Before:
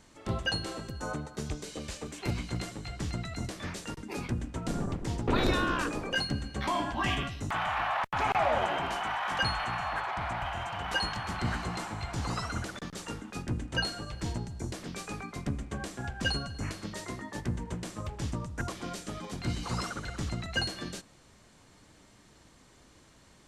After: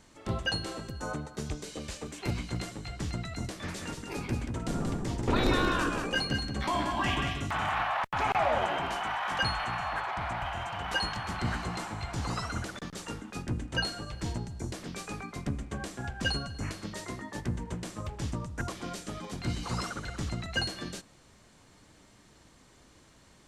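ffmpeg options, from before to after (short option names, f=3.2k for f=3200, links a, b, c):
-filter_complex "[0:a]asettb=1/sr,asplit=3[a][b][c];[a]atrim=end=3.504[d];[b]atrim=start=3.5:end=7.83,asetpts=PTS-STARTPTS,afade=t=in:d=0.004:c=qsin,afade=t=out:st=4.326:d=0.004:c=qsin,aecho=1:1:182:0.562,atrim=end_sample=190953[e];[c]atrim=start=7.826[f];[d][e]acrossfade=d=0.004:c1=hsin:c2=qsin[g];[g][f]acrossfade=d=0.004:c1=qsin:c2=hsin"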